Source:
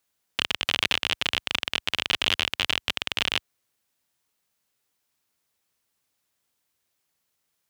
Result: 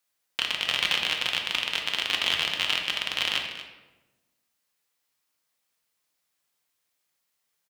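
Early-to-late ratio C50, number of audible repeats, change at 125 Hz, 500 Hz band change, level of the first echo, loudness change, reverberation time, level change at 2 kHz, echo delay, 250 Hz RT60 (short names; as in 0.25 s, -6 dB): 5.0 dB, 1, -6.0 dB, -2.5 dB, -13.5 dB, -0.5 dB, 1.1 s, 0.0 dB, 0.236 s, 1.4 s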